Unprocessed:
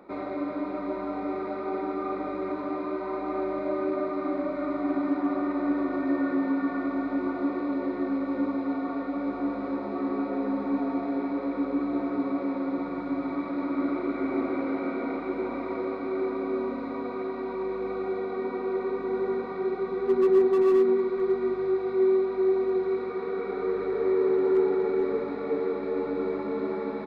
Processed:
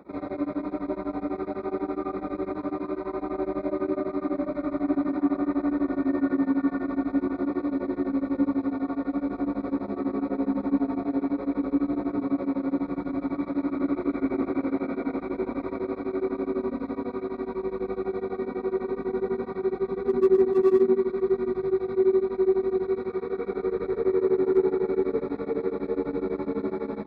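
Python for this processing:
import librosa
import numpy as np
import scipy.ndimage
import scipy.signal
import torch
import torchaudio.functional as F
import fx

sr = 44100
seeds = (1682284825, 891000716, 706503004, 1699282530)

y = scipy.signal.sosfilt(scipy.signal.butter(2, 44.0, 'highpass', fs=sr, output='sos'), x)
y = fx.low_shelf(y, sr, hz=250.0, db=11.5)
y = fx.notch(y, sr, hz=2900.0, q=7.4)
y = y * np.abs(np.cos(np.pi * 12.0 * np.arange(len(y)) / sr))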